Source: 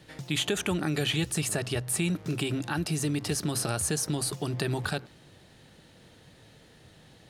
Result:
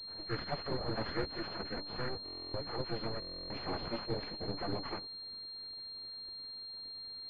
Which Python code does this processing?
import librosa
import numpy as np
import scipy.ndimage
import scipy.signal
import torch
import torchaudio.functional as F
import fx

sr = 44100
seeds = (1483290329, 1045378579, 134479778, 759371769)

y = fx.partial_stretch(x, sr, pct=78)
y = fx.hpss(y, sr, part='percussive', gain_db=-15)
y = np.abs(y)
y = fx.hpss(y, sr, part='harmonic', gain_db=-17)
y = fx.buffer_glitch(y, sr, at_s=(2.24, 3.2), block=1024, repeats=12)
y = fx.pwm(y, sr, carrier_hz=4200.0)
y = y * librosa.db_to_amplitude(5.5)